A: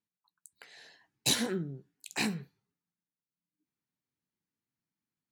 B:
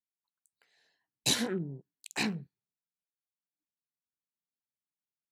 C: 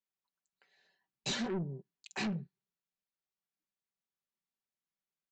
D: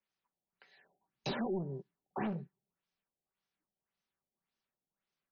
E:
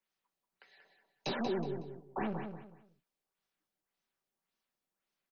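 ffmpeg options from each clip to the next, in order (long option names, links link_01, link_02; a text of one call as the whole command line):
ffmpeg -i in.wav -af "afwtdn=0.00501" out.wav
ffmpeg -i in.wav -af "highshelf=frequency=4500:gain=-8.5,aecho=1:1:5.2:0.56,aresample=16000,asoftclip=type=tanh:threshold=-31dB,aresample=44100" out.wav
ffmpeg -i in.wav -filter_complex "[0:a]acrossover=split=320|1200[link_01][link_02][link_03];[link_01]acompressor=threshold=-48dB:ratio=4[link_04];[link_02]acompressor=threshold=-43dB:ratio=4[link_05];[link_03]acompressor=threshold=-52dB:ratio=4[link_06];[link_04][link_05][link_06]amix=inputs=3:normalize=0,afftfilt=real='re*lt(b*sr/1024,820*pow(6600/820,0.5+0.5*sin(2*PI*1.8*pts/sr)))':imag='im*lt(b*sr/1024,820*pow(6600/820,0.5+0.5*sin(2*PI*1.8*pts/sr)))':win_size=1024:overlap=0.75,volume=7dB" out.wav
ffmpeg -i in.wav -filter_complex "[0:a]acrossover=split=210[link_01][link_02];[link_01]aeval=exprs='max(val(0),0)':channel_layout=same[link_03];[link_03][link_02]amix=inputs=2:normalize=0,aecho=1:1:185|370|555:0.447|0.125|0.035,volume=1.5dB" out.wav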